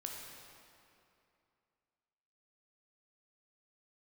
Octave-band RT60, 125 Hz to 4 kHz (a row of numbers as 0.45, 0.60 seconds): 2.7, 2.7, 2.6, 2.6, 2.3, 1.9 seconds